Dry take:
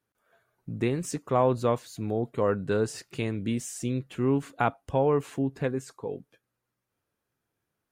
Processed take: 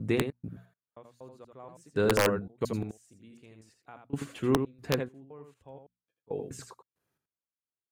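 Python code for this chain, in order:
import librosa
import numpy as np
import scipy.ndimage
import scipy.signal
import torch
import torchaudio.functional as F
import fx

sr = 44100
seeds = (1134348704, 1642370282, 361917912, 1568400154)

y = fx.block_reorder(x, sr, ms=241.0, group=4)
y = scipy.signal.sosfilt(scipy.signal.butter(2, 41.0, 'highpass', fs=sr, output='sos'), y)
y = fx.hum_notches(y, sr, base_hz=60, count=4)
y = fx.step_gate(y, sr, bpm=69, pattern='x.x......x', floor_db=-24.0, edge_ms=4.5)
y = y + 10.0 ** (-6.5 / 20.0) * np.pad(y, (int(82 * sr / 1000.0), 0))[:len(y)]
y = (np.mod(10.0 ** (15.0 / 20.0) * y + 1.0, 2.0) - 1.0) / 10.0 ** (15.0 / 20.0)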